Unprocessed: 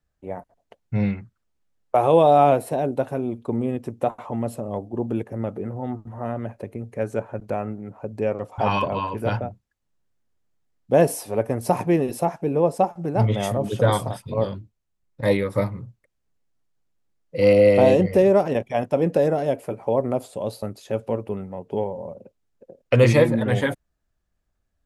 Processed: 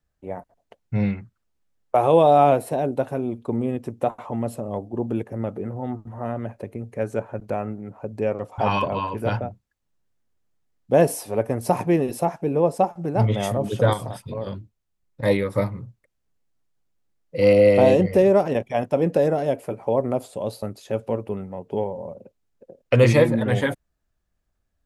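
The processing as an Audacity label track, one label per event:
13.930000	14.470000	compressor 3:1, threshold -27 dBFS

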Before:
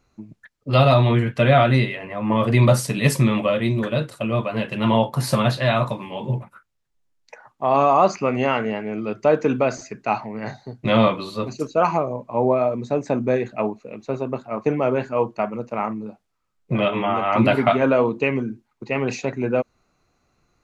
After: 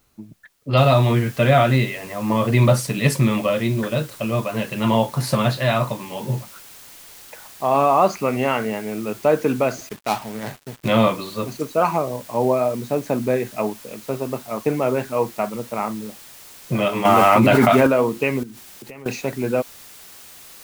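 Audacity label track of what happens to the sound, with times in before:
0.770000	0.770000	noise floor step -67 dB -43 dB
9.890000	10.880000	switching dead time of 0.15 ms
17.050000	17.870000	fast leveller amount 100%
18.430000	19.060000	compressor 12:1, threshold -34 dBFS

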